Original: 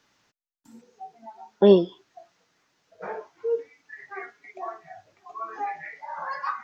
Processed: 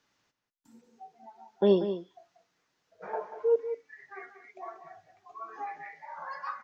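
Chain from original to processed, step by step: 3.13–3.56 s: peaking EQ 790 Hz +14 dB 2 oct; echo from a far wall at 32 m, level -10 dB; trim -7.5 dB

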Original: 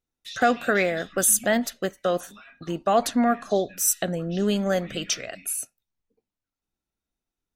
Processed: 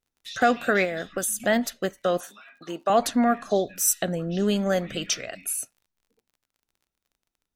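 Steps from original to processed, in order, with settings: 0.84–1.40 s: compression 6:1, threshold -25 dBFS, peak gain reduction 9.5 dB; 2.20–2.90 s: Bessel high-pass 370 Hz, order 2; crackle 32 per s -51 dBFS

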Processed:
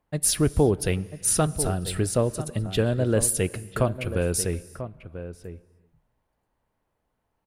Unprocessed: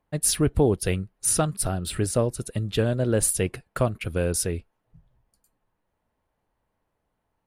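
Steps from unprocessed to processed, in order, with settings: echo from a far wall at 170 m, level -11 dB; on a send at -19.5 dB: reverberation, pre-delay 3 ms

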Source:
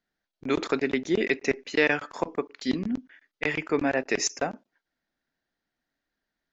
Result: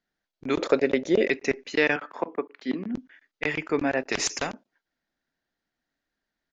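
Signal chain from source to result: 0.59–1.30 s: peaking EQ 550 Hz +14.5 dB 0.5 oct; resampled via 16 kHz; 1.96–2.95 s: three-band isolator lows -22 dB, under 180 Hz, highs -19 dB, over 3.1 kHz; 4.12–4.52 s: spectrum-flattening compressor 2:1

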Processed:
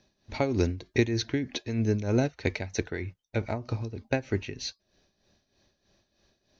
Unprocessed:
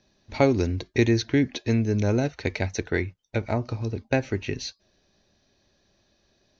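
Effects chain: tremolo 3.2 Hz, depth 70%

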